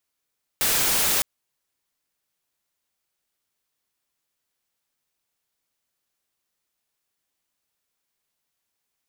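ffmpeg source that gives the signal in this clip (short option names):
-f lavfi -i "anoisesrc=c=white:a=0.146:d=0.61:r=44100:seed=1"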